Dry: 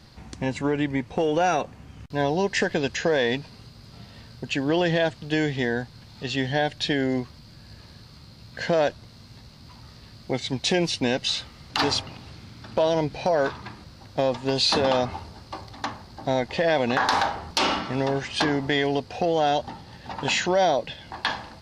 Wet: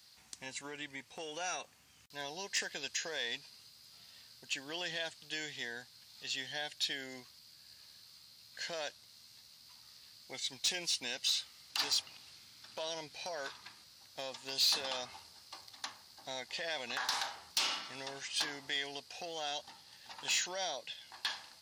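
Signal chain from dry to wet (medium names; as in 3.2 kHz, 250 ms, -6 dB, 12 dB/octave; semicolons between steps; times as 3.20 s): high-pass 56 Hz; pre-emphasis filter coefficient 0.97; saturation -23.5 dBFS, distortion -15 dB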